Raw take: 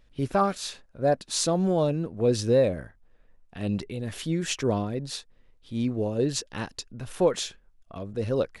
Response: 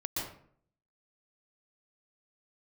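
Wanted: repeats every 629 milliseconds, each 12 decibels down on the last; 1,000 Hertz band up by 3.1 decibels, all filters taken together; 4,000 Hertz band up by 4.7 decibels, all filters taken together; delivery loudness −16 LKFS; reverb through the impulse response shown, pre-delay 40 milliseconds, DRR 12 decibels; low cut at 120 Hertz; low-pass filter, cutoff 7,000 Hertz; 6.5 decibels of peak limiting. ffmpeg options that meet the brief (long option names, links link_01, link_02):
-filter_complex "[0:a]highpass=120,lowpass=7000,equalizer=frequency=1000:width_type=o:gain=4,equalizer=frequency=4000:width_type=o:gain=6,alimiter=limit=-15.5dB:level=0:latency=1,aecho=1:1:629|1258|1887:0.251|0.0628|0.0157,asplit=2[link_01][link_02];[1:a]atrim=start_sample=2205,adelay=40[link_03];[link_02][link_03]afir=irnorm=-1:irlink=0,volume=-15.5dB[link_04];[link_01][link_04]amix=inputs=2:normalize=0,volume=12.5dB"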